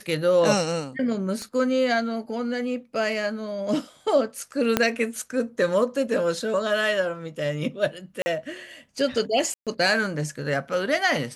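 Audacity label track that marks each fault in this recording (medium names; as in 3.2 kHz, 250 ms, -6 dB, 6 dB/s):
1.420000	1.420000	pop -22 dBFS
4.770000	4.770000	pop -4 dBFS
8.220000	8.260000	dropout 40 ms
9.540000	9.670000	dropout 127 ms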